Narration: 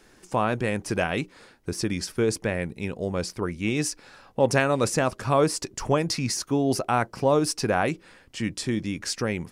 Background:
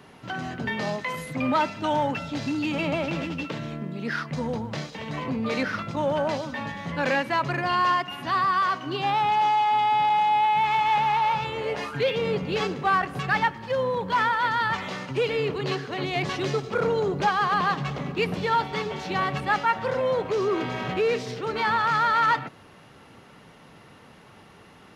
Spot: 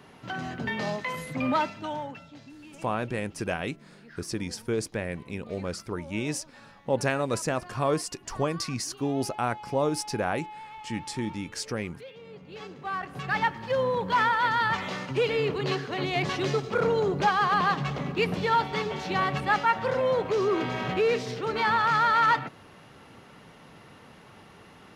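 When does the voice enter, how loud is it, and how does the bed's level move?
2.50 s, -5.0 dB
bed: 1.55 s -2 dB
2.54 s -21 dB
12.26 s -21 dB
13.56 s -0.5 dB

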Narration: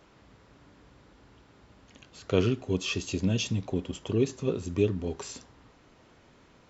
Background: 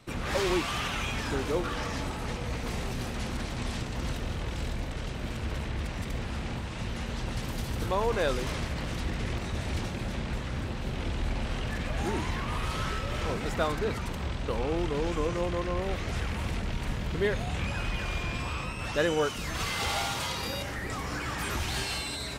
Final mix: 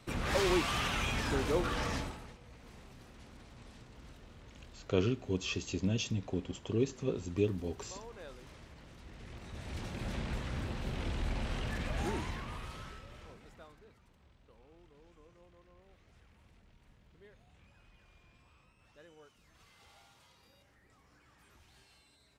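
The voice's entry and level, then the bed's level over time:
2.60 s, -5.5 dB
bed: 1.95 s -2 dB
2.38 s -21.5 dB
8.99 s -21.5 dB
10.10 s -4.5 dB
12.06 s -4.5 dB
13.97 s -31.5 dB

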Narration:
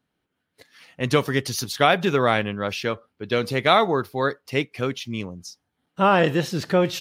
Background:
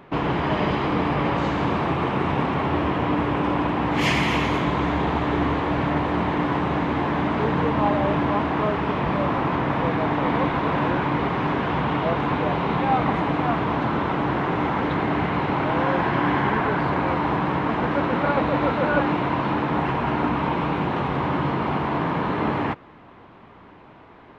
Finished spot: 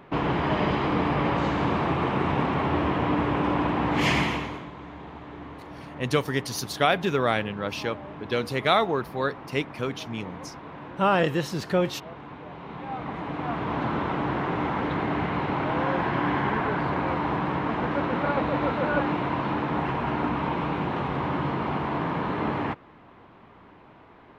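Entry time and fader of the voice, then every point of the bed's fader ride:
5.00 s, -4.0 dB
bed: 4.20 s -2 dB
4.71 s -18.5 dB
12.46 s -18.5 dB
13.82 s -4 dB

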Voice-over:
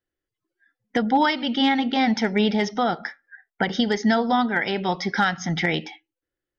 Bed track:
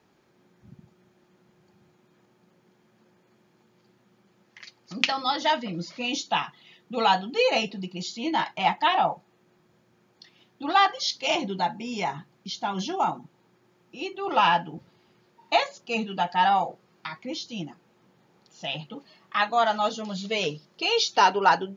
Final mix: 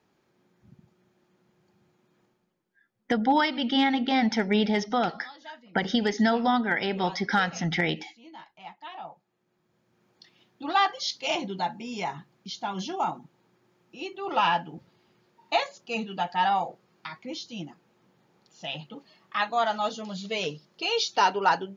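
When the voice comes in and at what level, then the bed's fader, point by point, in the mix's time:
2.15 s, -3.0 dB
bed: 2.26 s -5 dB
2.68 s -21 dB
8.79 s -21 dB
10.09 s -3 dB

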